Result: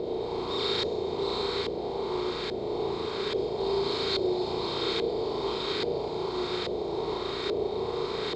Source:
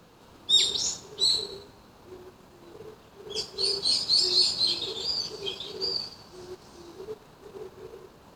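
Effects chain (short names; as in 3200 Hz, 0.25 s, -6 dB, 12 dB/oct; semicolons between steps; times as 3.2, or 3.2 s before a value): per-bin compression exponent 0.2; flutter echo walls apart 6.1 m, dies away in 0.51 s; LFO low-pass saw up 1.2 Hz 580–1600 Hz; gain -1 dB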